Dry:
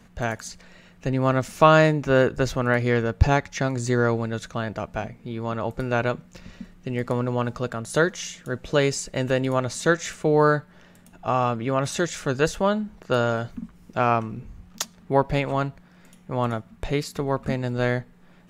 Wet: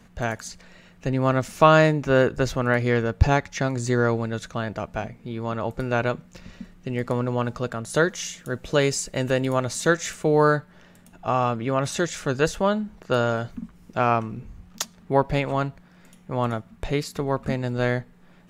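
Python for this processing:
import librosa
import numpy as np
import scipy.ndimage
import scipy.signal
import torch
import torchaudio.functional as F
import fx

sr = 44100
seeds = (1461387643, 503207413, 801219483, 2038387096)

y = fx.high_shelf(x, sr, hz=9200.0, db=7.5, at=(8.1, 10.57))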